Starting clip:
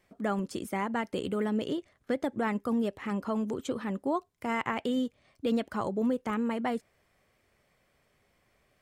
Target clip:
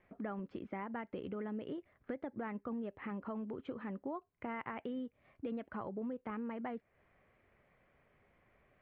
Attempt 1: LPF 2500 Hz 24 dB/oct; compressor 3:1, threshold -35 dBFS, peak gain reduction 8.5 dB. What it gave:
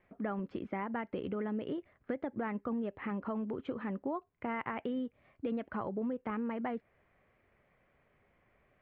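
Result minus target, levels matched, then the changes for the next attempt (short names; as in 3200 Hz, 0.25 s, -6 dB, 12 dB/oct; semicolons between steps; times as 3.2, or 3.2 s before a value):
compressor: peak gain reduction -5 dB
change: compressor 3:1, threshold -42.5 dBFS, peak gain reduction 13.5 dB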